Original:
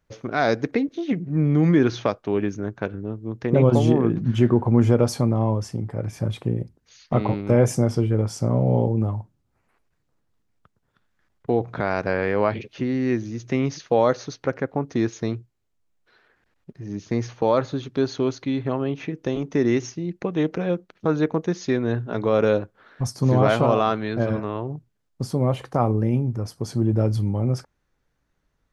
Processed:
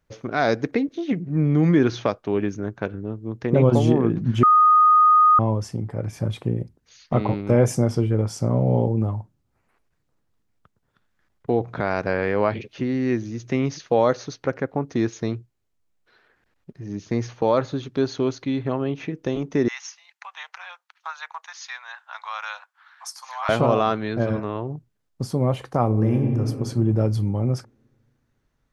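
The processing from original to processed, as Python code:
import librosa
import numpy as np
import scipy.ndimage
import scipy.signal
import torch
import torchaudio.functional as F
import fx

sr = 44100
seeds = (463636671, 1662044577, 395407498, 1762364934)

y = fx.steep_highpass(x, sr, hz=850.0, slope=48, at=(19.68, 23.49))
y = fx.reverb_throw(y, sr, start_s=25.86, length_s=0.56, rt60_s=2.3, drr_db=2.0)
y = fx.edit(y, sr, fx.bleep(start_s=4.43, length_s=0.96, hz=1240.0, db=-11.0), tone=tone)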